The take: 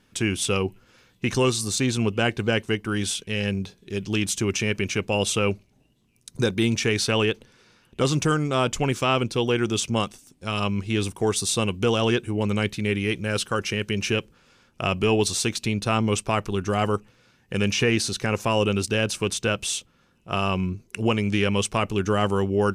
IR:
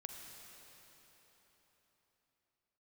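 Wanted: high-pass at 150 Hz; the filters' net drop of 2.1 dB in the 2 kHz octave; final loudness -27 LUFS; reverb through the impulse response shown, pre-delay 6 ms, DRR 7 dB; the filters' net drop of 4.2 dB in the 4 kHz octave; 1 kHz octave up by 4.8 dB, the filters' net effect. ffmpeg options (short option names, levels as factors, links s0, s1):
-filter_complex "[0:a]highpass=150,equalizer=f=1000:t=o:g=7.5,equalizer=f=2000:t=o:g=-3.5,equalizer=f=4000:t=o:g=-5,asplit=2[s0][s1];[1:a]atrim=start_sample=2205,adelay=6[s2];[s1][s2]afir=irnorm=-1:irlink=0,volume=0.668[s3];[s0][s3]amix=inputs=2:normalize=0,volume=0.708"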